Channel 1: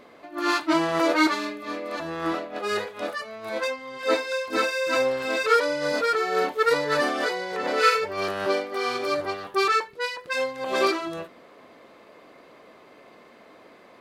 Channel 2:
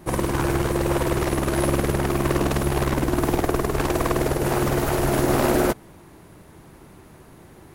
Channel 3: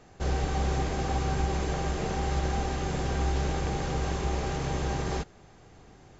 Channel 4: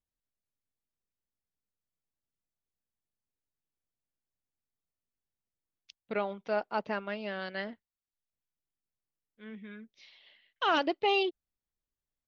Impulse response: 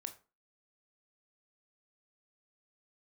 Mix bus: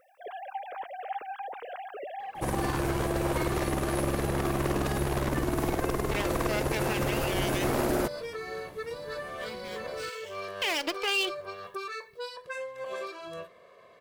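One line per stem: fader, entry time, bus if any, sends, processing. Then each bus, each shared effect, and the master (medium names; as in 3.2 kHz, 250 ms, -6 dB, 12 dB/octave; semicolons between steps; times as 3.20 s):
-11.5 dB, 2.20 s, send -4.5 dB, comb 1.8 ms, depth 97%; compression 16:1, threshold -25 dBFS, peak gain reduction 13 dB
-4.5 dB, 2.35 s, no send, none
-12.0 dB, 0.00 s, send -19.5 dB, formants replaced by sine waves
+3.0 dB, 0.00 s, send -14 dB, comb filter that takes the minimum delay 0.37 ms; tilt EQ +4 dB/octave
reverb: on, RT60 0.35 s, pre-delay 18 ms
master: peak limiter -19.5 dBFS, peak gain reduction 9 dB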